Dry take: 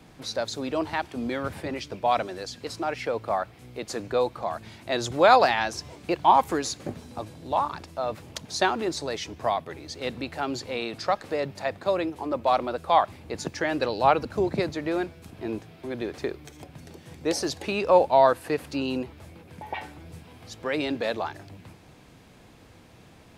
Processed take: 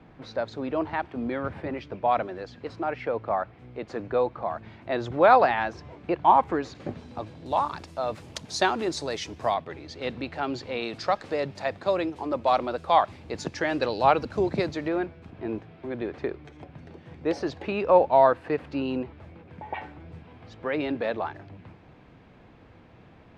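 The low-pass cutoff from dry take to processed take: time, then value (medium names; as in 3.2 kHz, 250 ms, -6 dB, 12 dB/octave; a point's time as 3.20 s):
2.1 kHz
from 6.75 s 3.8 kHz
from 7.46 s 9.1 kHz
from 9.54 s 3.9 kHz
from 10.83 s 6.3 kHz
from 14.88 s 2.4 kHz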